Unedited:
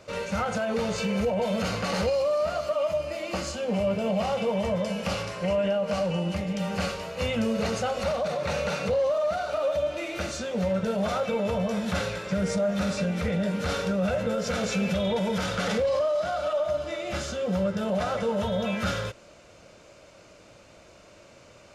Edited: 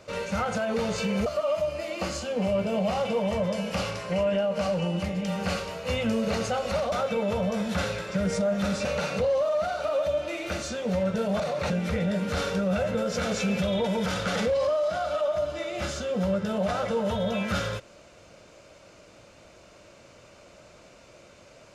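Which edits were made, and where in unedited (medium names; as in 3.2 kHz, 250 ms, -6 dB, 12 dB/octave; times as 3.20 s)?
1.26–2.58 s: delete
8.24–8.54 s: swap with 11.09–13.02 s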